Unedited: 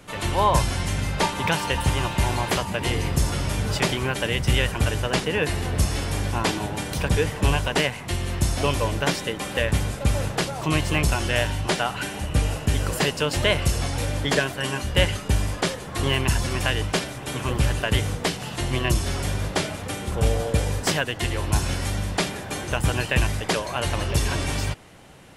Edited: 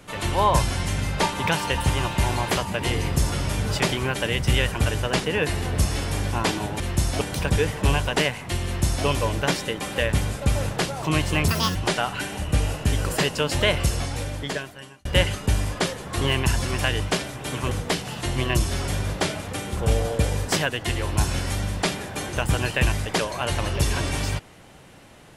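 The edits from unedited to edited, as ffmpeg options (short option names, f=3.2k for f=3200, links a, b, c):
-filter_complex "[0:a]asplit=7[a][b][c][d][e][f][g];[a]atrim=end=6.802[h];[b]atrim=start=8.238:end=8.652[i];[c]atrim=start=6.798:end=11.074[j];[d]atrim=start=11.07:end=11.57,asetpts=PTS-STARTPTS,asetrate=81144,aresample=44100[k];[e]atrim=start=11.566:end=14.87,asetpts=PTS-STARTPTS,afade=t=out:st=2.094:d=1.21[l];[f]atrim=start=14.87:end=17.532,asetpts=PTS-STARTPTS,afade=t=in:d=0.004:c=hsin[m];[g]atrim=start=18.058[n];[h][i]acrossfade=d=0.004:c1=hsin:c2=hsin[o];[o][j]acrossfade=d=0.004:c1=hsin:c2=hsin[p];[p][k]acrossfade=d=0.004:c1=hsin:c2=hsin[q];[l][m]concat=n=2:v=0:a=1[r];[q][r]acrossfade=d=0.004:c1=hsin:c2=hsin[s];[s][n]acrossfade=d=0.004:c1=hsin:c2=hsin"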